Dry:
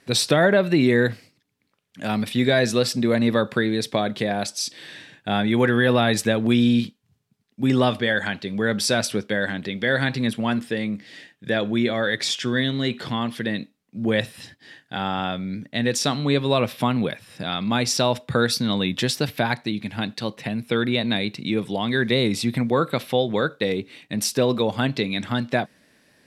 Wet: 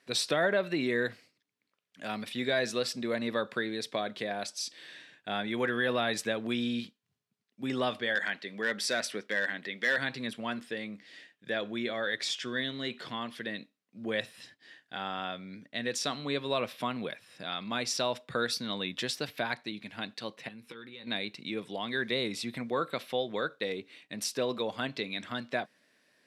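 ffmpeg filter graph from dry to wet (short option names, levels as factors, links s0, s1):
-filter_complex "[0:a]asettb=1/sr,asplit=3[s0][s1][s2];[s0]atrim=end=8.154[s3];[s1]atrim=start=8.15:end=9.98,asetpts=PTS-STARTPTS,afade=t=in:d=0.004:c=qsin,afade=t=out:st=1.826:d=0.004:c=qsin,highpass=170,equalizer=f=1900:w=4.5:g=8.5,volume=3.98,asoftclip=hard,volume=0.251[s4];[s2]atrim=start=9.976[s5];[s3][s4]acrossfade=d=0.004:c1=hsin:c2=qsin[s6];[s6][s5]acrossfade=d=0.004:c1=qsin:c2=hsin,asettb=1/sr,asplit=3[s7][s8][s9];[s7]atrim=end=20.484[s10];[s8]atrim=start=20.48:end=21.07,asetpts=PTS-STARTPTS,afade=t=in:d=0.004:c=qsin,afade=t=out:st=0.586:d=0.004:c=qsin,acompressor=threshold=0.0316:ratio=16:attack=3.2:release=140:knee=1:detection=peak,asuperstop=centerf=660:order=8:qfactor=3.9,asplit=2[s11][s12];[s12]adelay=18,volume=0.299[s13];[s11][s13]amix=inputs=2:normalize=0,atrim=end_sample=26019[s14];[s9]atrim=start=21.066[s15];[s10][s14]acrossfade=d=0.004:c1=hsin:c2=qsin[s16];[s16][s15]acrossfade=d=0.004:c1=qsin:c2=hsin,highpass=f=480:p=1,highshelf=f=10000:g=-8,bandreject=f=840:w=12,volume=0.422"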